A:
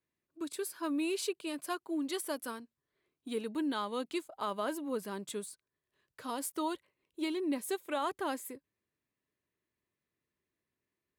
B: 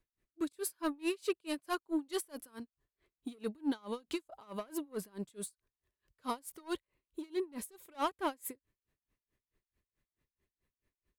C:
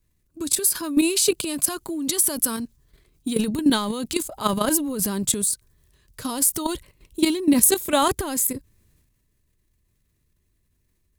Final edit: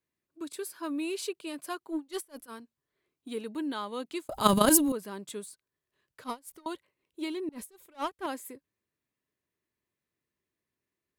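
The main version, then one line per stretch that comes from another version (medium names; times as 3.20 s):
A
1.92–2.50 s: from B, crossfade 0.06 s
4.29–4.92 s: from C
6.24–6.66 s: from B
7.49–8.26 s: from B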